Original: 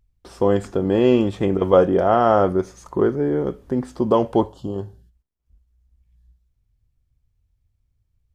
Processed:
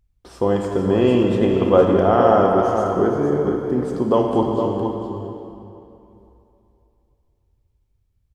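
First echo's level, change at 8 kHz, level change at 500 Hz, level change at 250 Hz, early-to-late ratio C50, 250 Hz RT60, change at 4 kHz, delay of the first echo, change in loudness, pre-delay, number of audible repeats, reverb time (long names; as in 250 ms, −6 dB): −7.5 dB, can't be measured, +1.5 dB, +2.0 dB, 1.0 dB, 2.8 s, +1.5 dB, 464 ms, +1.5 dB, 29 ms, 1, 2.9 s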